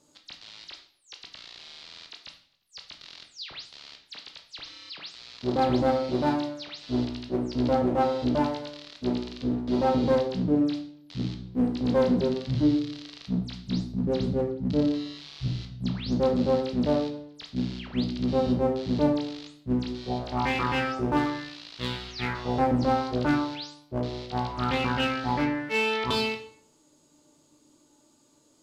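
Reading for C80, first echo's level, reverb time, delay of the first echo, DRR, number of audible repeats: 12.0 dB, none, 0.60 s, none, 3.0 dB, none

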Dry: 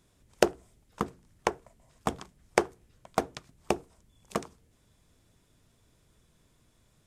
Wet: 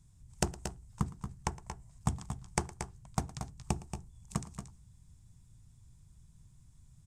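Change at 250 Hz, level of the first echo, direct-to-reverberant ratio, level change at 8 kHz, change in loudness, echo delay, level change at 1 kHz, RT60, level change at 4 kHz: -3.5 dB, -19.5 dB, none, +1.0 dB, -6.5 dB, 0.113 s, -7.5 dB, none, -6.0 dB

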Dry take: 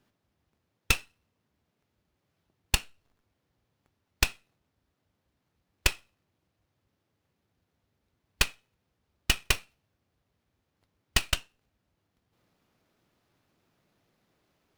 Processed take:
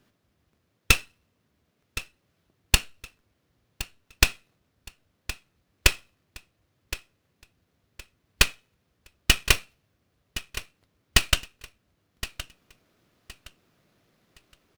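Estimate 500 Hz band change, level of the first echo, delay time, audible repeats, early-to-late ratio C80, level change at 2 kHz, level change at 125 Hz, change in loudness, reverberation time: +6.0 dB, -14.5 dB, 1.067 s, 2, none, +6.0 dB, +6.0 dB, +3.5 dB, none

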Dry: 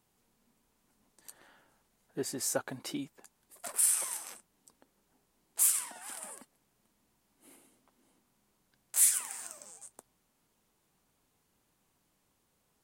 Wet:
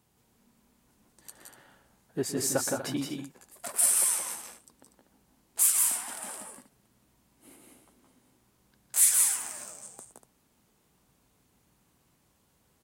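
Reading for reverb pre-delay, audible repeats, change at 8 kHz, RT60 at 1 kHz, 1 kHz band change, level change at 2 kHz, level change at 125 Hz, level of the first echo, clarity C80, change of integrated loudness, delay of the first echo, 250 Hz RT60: none, 3, +5.0 dB, none, +5.5 dB, +5.0 dB, +9.0 dB, -16.0 dB, none, +4.5 dB, 0.118 s, none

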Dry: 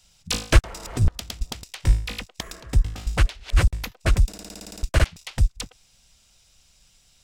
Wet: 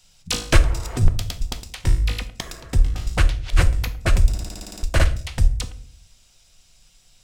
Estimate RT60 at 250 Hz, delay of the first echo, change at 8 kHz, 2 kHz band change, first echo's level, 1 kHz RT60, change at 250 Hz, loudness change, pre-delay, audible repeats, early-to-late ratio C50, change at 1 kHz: 0.80 s, none, +2.0 dB, +2.0 dB, none, 0.45 s, +2.0 dB, +2.0 dB, 3 ms, none, 15.0 dB, +2.0 dB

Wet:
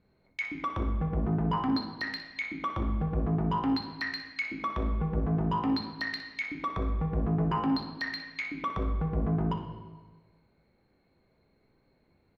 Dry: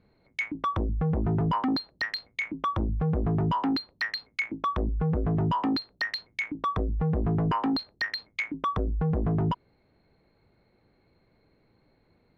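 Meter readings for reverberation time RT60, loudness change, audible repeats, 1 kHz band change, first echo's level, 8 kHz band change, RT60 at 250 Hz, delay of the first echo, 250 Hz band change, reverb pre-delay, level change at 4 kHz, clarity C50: 1.3 s, -2.5 dB, 1, -3.5 dB, -11.0 dB, n/a, 1.4 s, 61 ms, -1.5 dB, 4 ms, -4.0 dB, 4.5 dB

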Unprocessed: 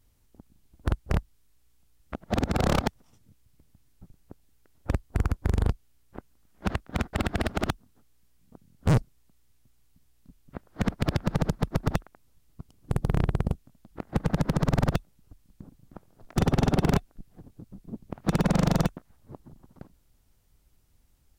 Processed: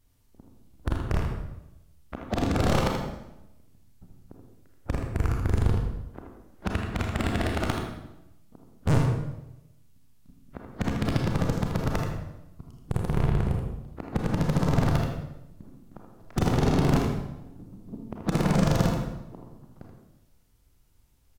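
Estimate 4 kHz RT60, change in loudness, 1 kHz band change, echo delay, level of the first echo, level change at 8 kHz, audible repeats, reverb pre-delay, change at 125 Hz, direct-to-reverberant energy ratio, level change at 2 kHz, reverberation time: 0.75 s, +0.5 dB, +1.0 dB, 80 ms, -6.0 dB, +1.0 dB, 1, 28 ms, +1.5 dB, 0.0 dB, +1.0 dB, 0.90 s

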